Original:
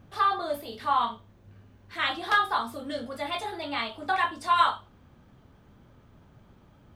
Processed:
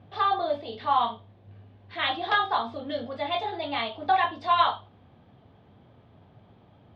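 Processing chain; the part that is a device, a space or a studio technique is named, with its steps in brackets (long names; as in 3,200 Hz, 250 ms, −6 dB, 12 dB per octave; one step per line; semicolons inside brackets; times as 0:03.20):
guitar cabinet (loudspeaker in its box 89–4,100 Hz, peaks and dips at 100 Hz +6 dB, 450 Hz +3 dB, 720 Hz +8 dB, 1,400 Hz −5 dB, 3,500 Hz +4 dB)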